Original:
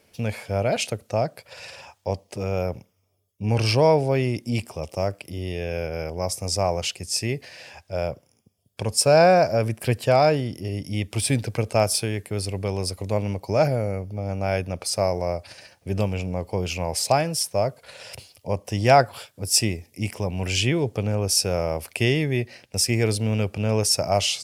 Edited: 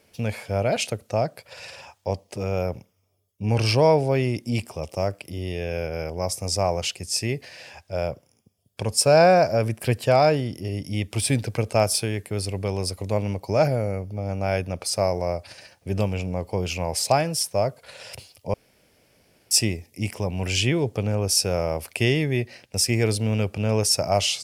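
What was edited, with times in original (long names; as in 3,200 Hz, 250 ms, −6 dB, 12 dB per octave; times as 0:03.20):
0:18.54–0:19.51: fill with room tone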